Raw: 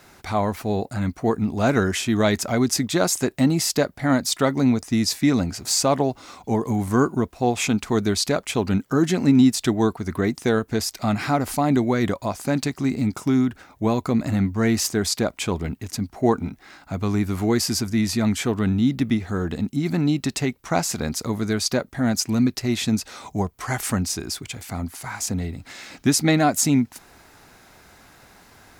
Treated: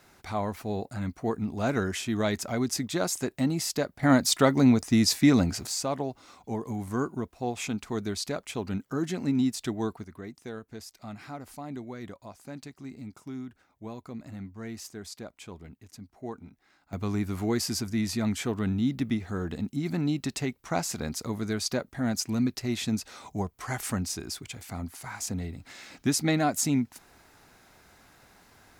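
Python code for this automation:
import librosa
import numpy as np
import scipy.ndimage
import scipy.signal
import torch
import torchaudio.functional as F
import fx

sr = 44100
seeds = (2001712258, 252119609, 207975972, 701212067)

y = fx.gain(x, sr, db=fx.steps((0.0, -8.0), (4.03, -1.0), (5.67, -10.5), (10.04, -19.0), (16.93, -7.0)))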